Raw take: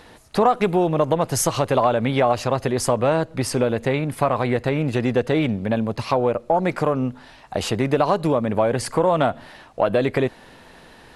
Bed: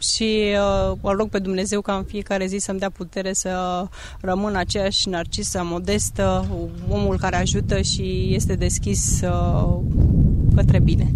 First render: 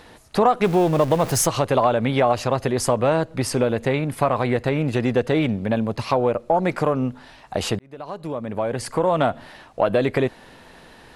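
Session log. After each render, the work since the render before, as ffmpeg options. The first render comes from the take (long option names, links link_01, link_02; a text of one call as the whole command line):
ffmpeg -i in.wav -filter_complex "[0:a]asettb=1/sr,asplit=3[link_01][link_02][link_03];[link_01]atrim=end=0.644[link_04];[link_02]atrim=start=0.64:end=1.46,asetpts=PTS-STARTPTS,afade=type=in:duration=0.004:curve=qsin,afade=type=out:start_time=0.816:duration=0.004:curve=qsin,aeval=exprs='val(0)+0.5*0.0422*sgn(val(0))':channel_layout=same[link_05];[link_03]atrim=start=1.456[link_06];[link_04][link_05]acrossfade=duration=0.004:curve1=hsin:curve2=qsin[link_07];[link_07][link_06]acrossfade=duration=0.004:curve1=qsin:curve2=hsin,asplit=2[link_08][link_09];[link_08]atrim=end=7.79,asetpts=PTS-STARTPTS,afade=type=out:start_time=7.786:duration=0.004:curve=hsin[link_10];[link_09]atrim=start=7.79,asetpts=PTS-STARTPTS,afade=type=in:duration=1.51[link_11];[link_10][link_11]concat=n=2:v=0:a=1" out.wav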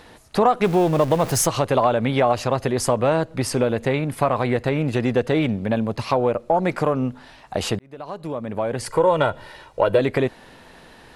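ffmpeg -i in.wav -filter_complex "[0:a]asettb=1/sr,asplit=3[link_01][link_02][link_03];[link_01]atrim=end=8.864[link_04];[link_02]atrim=start=8.86:end=9.99,asetpts=PTS-STARTPTS,afade=type=in:duration=0.004:curve=qsin,afade=type=out:start_time=1.126:duration=0.004:curve=qsin,aecho=1:1:2.1:0.65,atrim=end_sample=49833[link_05];[link_03]atrim=start=9.986[link_06];[link_04][link_05]acrossfade=duration=0.004:curve1=hsin:curve2=qsin[link_07];[link_07][link_06]acrossfade=duration=0.004:curve1=qsin:curve2=hsin" out.wav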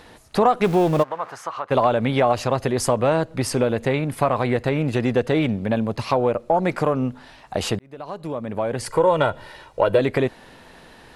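ffmpeg -i in.wav -filter_complex "[0:a]asplit=3[link_01][link_02][link_03];[link_01]afade=type=out:start_time=1.02:duration=0.02[link_04];[link_02]bandpass=frequency=1200:width_type=q:width=2.2,afade=type=in:start_time=1.02:duration=0.02,afade=type=out:start_time=1.7:duration=0.02[link_05];[link_03]afade=type=in:start_time=1.7:duration=0.02[link_06];[link_04][link_05][link_06]amix=inputs=3:normalize=0" out.wav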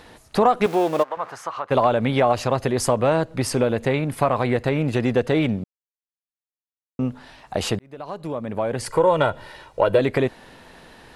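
ffmpeg -i in.wav -filter_complex "[0:a]asettb=1/sr,asplit=3[link_01][link_02][link_03];[link_01]atrim=end=0.664[link_04];[link_02]atrim=start=0.66:end=1.17,asetpts=PTS-STARTPTS,afade=type=in:duration=0.004:curve=qsin,afade=type=out:start_time=0.506:duration=0.004:curve=qsin,highpass=330[link_05];[link_03]atrim=start=1.166[link_06];[link_04][link_05]acrossfade=duration=0.004:curve1=hsin:curve2=qsin[link_07];[link_07][link_06]acrossfade=duration=0.004:curve1=qsin:curve2=hsin,asplit=3[link_08][link_09][link_10];[link_08]atrim=end=5.64,asetpts=PTS-STARTPTS,afade=type=out:start_time=5.636:duration=0.004:curve=hsin[link_11];[link_09]atrim=start=5.64:end=6.99,asetpts=PTS-STARTPTS,volume=0[link_12];[link_10]atrim=start=6.99,asetpts=PTS-STARTPTS,afade=type=in:duration=0.004:curve=hsin[link_13];[link_11][link_12][link_13]concat=n=3:v=0:a=1" out.wav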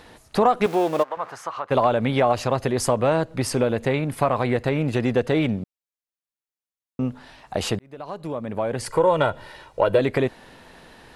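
ffmpeg -i in.wav -af "volume=-1dB" out.wav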